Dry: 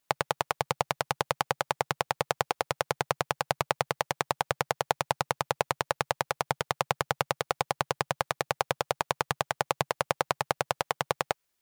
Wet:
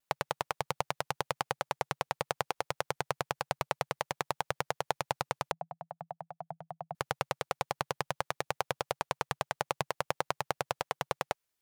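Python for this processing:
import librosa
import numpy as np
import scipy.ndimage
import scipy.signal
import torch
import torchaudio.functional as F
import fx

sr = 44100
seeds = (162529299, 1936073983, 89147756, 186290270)

y = fx.double_bandpass(x, sr, hz=340.0, octaves=2.1, at=(5.51, 6.95))
y = fx.vibrato(y, sr, rate_hz=0.54, depth_cents=19.0)
y = y * librosa.db_to_amplitude(-5.0)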